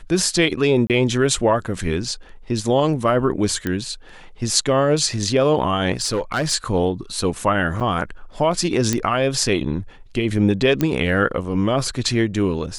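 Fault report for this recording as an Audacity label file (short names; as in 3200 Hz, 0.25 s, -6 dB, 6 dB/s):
0.870000	0.900000	gap 28 ms
3.670000	3.670000	pop -10 dBFS
5.930000	6.530000	clipped -16 dBFS
7.800000	7.810000	gap 6.8 ms
8.930000	8.930000	pop -5 dBFS
10.810000	10.810000	pop -7 dBFS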